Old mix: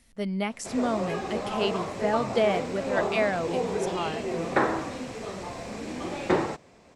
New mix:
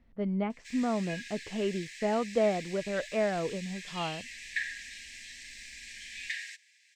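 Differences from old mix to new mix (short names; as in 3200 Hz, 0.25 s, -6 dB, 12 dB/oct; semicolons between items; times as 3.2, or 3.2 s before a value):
speech: add tape spacing loss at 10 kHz 45 dB; background: add brick-wall FIR high-pass 1600 Hz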